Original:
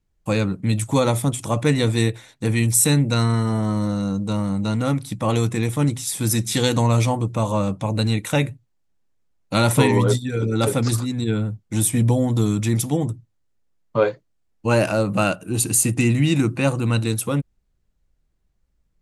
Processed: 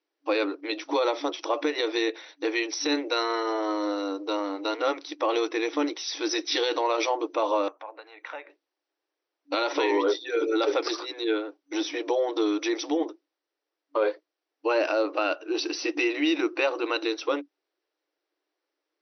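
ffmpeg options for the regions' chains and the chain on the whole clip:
ffmpeg -i in.wav -filter_complex "[0:a]asettb=1/sr,asplit=3[link_01][link_02][link_03];[link_01]atrim=end=7.684[link_04];[link_02]atrim=start=7.68:end=8.5,asetpts=PTS-STARTPTS,afade=type=in:duration=0.004:curve=qsin,afade=type=out:start_time=0.816:duration=0.004:curve=qsin,acompressor=threshold=-27dB:ratio=8:attack=3.2:release=140:knee=1:detection=peak,acrossover=split=590 2200:gain=0.0708 1 0.0891[link_05][link_06][link_07];[link_05][link_06][link_07]amix=inputs=3:normalize=0[link_08];[link_03]atrim=start=8.496[link_09];[link_04][link_08]acrossfade=duration=0.004:curve1=hsin:curve2=qsin[link_10];[link_10][link_09]acrossfade=duration=0.004:curve1=qsin:curve2=hsin,afftfilt=real='re*between(b*sr/4096,280,6000)':imag='im*between(b*sr/4096,280,6000)':win_size=4096:overlap=0.75,alimiter=limit=-16.5dB:level=0:latency=1:release=119,volume=1.5dB" out.wav

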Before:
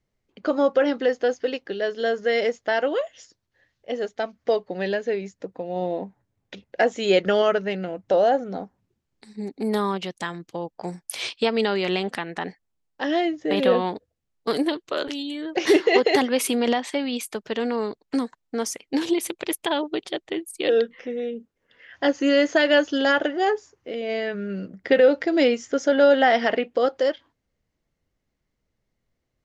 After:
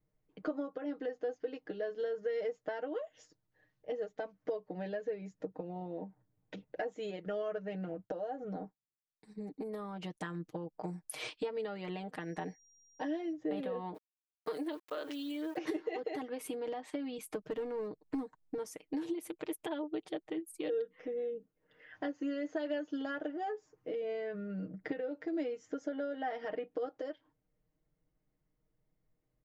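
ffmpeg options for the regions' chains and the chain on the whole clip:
ffmpeg -i in.wav -filter_complex "[0:a]asettb=1/sr,asplit=3[link_01][link_02][link_03];[link_01]atrim=end=7.934[link_04];[link_02]atrim=start=7.93:end=10.22,asetpts=PTS-STARTPTS,afade=type=in:duration=0.004:curve=qsin,afade=type=out:start_time=2.286:duration=0.004:curve=qsin,agate=range=-33dB:threshold=-46dB:ratio=3:release=100:detection=peak,acompressor=threshold=-28dB:ratio=2.5:attack=3.2:release=140:knee=1:detection=peak[link_05];[link_03]atrim=start=10.216[link_06];[link_04][link_05]acrossfade=duration=0.004:curve1=hsin:curve2=qsin[link_07];[link_07][link_06]acrossfade=duration=0.004:curve1=qsin:curve2=hsin,asettb=1/sr,asplit=3[link_08][link_09][link_10];[link_08]atrim=end=12.204[link_11];[link_09]atrim=start=12.2:end=13.33,asetpts=PTS-STARTPTS,afade=type=in:duration=0.004:curve=qsin,afade=type=out:start_time=1.126:duration=0.004:curve=qsin,equalizer=frequency=1300:width=7.2:gain=-10.5,aeval=exprs='val(0)+0.00251*sin(2*PI*5700*n/s)':channel_layout=same[link_12];[link_10]atrim=start=13.326[link_13];[link_11][link_12]acrossfade=duration=0.004:curve1=hsin:curve2=qsin[link_14];[link_14][link_13]acrossfade=duration=0.004:curve1=qsin:curve2=hsin,asettb=1/sr,asplit=3[link_15][link_16][link_17];[link_15]atrim=end=13.944[link_18];[link_16]atrim=start=13.94:end=15.58,asetpts=PTS-STARTPTS,afade=type=in:duration=0.004:curve=qsin,afade=type=out:start_time=1.636:duration=0.004:curve=qsin,aeval=exprs='val(0)*gte(abs(val(0)),0.00944)':channel_layout=same,highpass=frequency=560:poles=1[link_19];[link_17]atrim=start=15.576[link_20];[link_18][link_19]acrossfade=duration=0.004:curve1=hsin:curve2=qsin[link_21];[link_21][link_20]acrossfade=duration=0.004:curve1=qsin:curve2=hsin,asettb=1/sr,asplit=3[link_22][link_23][link_24];[link_22]atrim=end=17.184[link_25];[link_23]atrim=start=17.18:end=18.58,asetpts=PTS-STARTPTS,afade=type=in:duration=0.004:curve=qsin,afade=type=out:start_time=1.396:duration=0.004:curve=qsin,lowshelf=frequency=330:gain=6.5,asoftclip=type=hard:threshold=-18dB[link_26];[link_24]atrim=start=18.576[link_27];[link_25][link_26]acrossfade=duration=0.004:curve1=hsin:curve2=qsin[link_28];[link_28][link_27]acrossfade=duration=0.004:curve1=qsin:curve2=hsin,equalizer=frequency=4800:width_type=o:width=2.9:gain=-12,acompressor=threshold=-33dB:ratio=6,aecho=1:1:6.5:0.77,volume=-4.5dB" out.wav

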